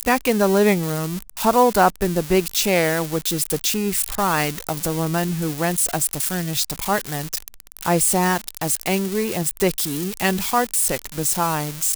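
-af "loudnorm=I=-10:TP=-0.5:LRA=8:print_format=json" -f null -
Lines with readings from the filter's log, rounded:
"input_i" : "-20.6",
"input_tp" : "-2.4",
"input_lra" : "2.1",
"input_thresh" : "-30.6",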